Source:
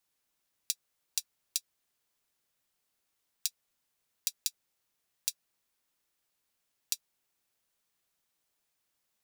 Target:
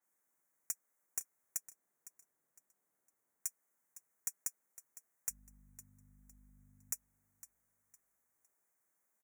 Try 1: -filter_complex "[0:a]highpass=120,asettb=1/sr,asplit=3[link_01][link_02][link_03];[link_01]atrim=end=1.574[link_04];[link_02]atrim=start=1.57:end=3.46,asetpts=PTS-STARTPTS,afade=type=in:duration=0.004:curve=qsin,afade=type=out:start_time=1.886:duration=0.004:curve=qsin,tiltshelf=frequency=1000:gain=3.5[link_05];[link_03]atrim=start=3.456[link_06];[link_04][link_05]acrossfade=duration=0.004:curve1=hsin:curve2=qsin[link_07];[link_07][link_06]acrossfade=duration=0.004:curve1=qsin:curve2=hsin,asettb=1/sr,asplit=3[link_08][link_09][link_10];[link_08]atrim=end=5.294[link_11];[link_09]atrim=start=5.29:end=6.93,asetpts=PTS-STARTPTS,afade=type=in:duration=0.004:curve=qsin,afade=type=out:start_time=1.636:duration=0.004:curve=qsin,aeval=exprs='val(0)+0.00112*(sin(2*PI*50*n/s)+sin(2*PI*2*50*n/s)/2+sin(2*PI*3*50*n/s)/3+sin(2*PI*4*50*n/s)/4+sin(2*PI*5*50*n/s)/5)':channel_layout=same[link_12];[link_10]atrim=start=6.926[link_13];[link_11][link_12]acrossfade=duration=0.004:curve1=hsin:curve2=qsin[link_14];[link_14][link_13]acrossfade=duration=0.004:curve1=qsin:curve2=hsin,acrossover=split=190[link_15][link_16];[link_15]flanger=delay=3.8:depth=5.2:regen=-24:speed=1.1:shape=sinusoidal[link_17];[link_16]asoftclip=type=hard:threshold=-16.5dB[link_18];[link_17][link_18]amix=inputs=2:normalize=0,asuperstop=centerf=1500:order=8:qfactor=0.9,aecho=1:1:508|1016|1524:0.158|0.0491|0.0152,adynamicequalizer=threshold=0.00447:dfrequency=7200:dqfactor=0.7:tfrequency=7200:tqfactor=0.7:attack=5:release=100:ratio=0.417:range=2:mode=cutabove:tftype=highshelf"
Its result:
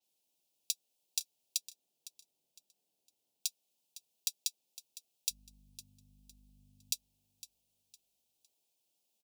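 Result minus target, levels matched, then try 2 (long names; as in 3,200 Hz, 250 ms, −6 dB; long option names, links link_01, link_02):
4,000 Hz band +14.0 dB; hard clipping: distortion −5 dB
-filter_complex "[0:a]highpass=120,asettb=1/sr,asplit=3[link_01][link_02][link_03];[link_01]atrim=end=1.574[link_04];[link_02]atrim=start=1.57:end=3.46,asetpts=PTS-STARTPTS,afade=type=in:duration=0.004:curve=qsin,afade=type=out:start_time=1.886:duration=0.004:curve=qsin,tiltshelf=frequency=1000:gain=3.5[link_05];[link_03]atrim=start=3.456[link_06];[link_04][link_05]acrossfade=duration=0.004:curve1=hsin:curve2=qsin[link_07];[link_07][link_06]acrossfade=duration=0.004:curve1=qsin:curve2=hsin,asettb=1/sr,asplit=3[link_08][link_09][link_10];[link_08]atrim=end=5.294[link_11];[link_09]atrim=start=5.29:end=6.93,asetpts=PTS-STARTPTS,afade=type=in:duration=0.004:curve=qsin,afade=type=out:start_time=1.636:duration=0.004:curve=qsin,aeval=exprs='val(0)+0.00112*(sin(2*PI*50*n/s)+sin(2*PI*2*50*n/s)/2+sin(2*PI*3*50*n/s)/3+sin(2*PI*4*50*n/s)/4+sin(2*PI*5*50*n/s)/5)':channel_layout=same[link_12];[link_10]atrim=start=6.926[link_13];[link_11][link_12]acrossfade=duration=0.004:curve1=hsin:curve2=qsin[link_14];[link_14][link_13]acrossfade=duration=0.004:curve1=qsin:curve2=hsin,acrossover=split=190[link_15][link_16];[link_15]flanger=delay=3.8:depth=5.2:regen=-24:speed=1.1:shape=sinusoidal[link_17];[link_16]asoftclip=type=hard:threshold=-24dB[link_18];[link_17][link_18]amix=inputs=2:normalize=0,asuperstop=centerf=3700:order=8:qfactor=0.9,aecho=1:1:508|1016|1524:0.158|0.0491|0.0152,adynamicequalizer=threshold=0.00447:dfrequency=7200:dqfactor=0.7:tfrequency=7200:tqfactor=0.7:attack=5:release=100:ratio=0.417:range=2:mode=cutabove:tftype=highshelf"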